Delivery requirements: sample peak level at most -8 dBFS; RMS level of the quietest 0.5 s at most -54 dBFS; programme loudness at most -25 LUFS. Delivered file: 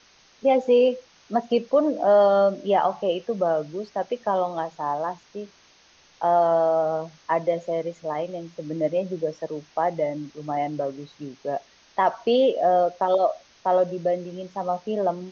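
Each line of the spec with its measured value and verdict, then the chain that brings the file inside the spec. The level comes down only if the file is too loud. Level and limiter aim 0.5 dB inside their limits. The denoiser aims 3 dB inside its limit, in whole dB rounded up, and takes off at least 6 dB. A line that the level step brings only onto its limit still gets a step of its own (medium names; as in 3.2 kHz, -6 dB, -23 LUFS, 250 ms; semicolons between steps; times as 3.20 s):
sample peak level -9.0 dBFS: pass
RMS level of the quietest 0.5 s -56 dBFS: pass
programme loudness -24.0 LUFS: fail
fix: trim -1.5 dB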